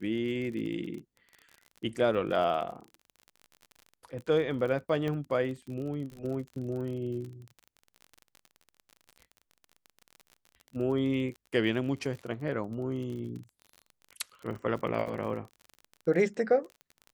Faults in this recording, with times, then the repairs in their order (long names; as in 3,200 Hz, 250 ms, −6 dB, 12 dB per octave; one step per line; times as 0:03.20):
surface crackle 34 per second −38 dBFS
0:05.08: click −22 dBFS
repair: click removal